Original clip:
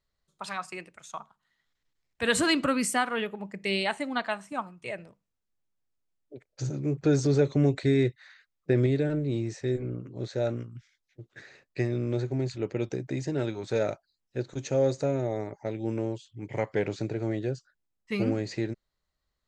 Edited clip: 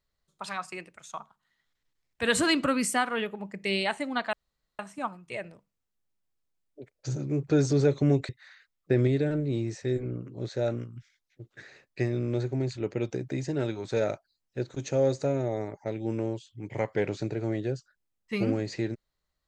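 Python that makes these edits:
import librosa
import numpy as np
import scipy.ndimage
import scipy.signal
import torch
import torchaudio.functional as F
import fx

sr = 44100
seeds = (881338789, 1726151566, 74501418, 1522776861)

y = fx.edit(x, sr, fx.insert_room_tone(at_s=4.33, length_s=0.46),
    fx.cut(start_s=7.83, length_s=0.25), tone=tone)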